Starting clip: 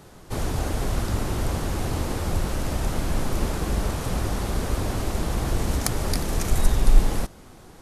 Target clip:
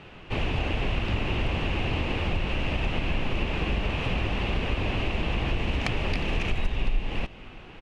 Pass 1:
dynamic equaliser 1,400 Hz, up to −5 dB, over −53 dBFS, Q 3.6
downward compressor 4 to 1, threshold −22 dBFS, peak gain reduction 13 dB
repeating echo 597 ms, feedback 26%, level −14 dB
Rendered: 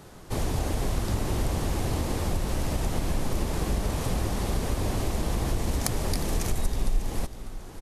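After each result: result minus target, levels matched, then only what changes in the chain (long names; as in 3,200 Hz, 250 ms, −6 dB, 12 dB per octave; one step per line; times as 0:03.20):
2,000 Hz band −8.0 dB; echo-to-direct +11.5 dB
add after dynamic equaliser: low-pass with resonance 2,700 Hz, resonance Q 6.2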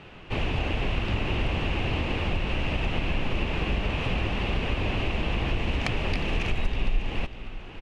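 echo-to-direct +11.5 dB
change: repeating echo 597 ms, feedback 26%, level −25.5 dB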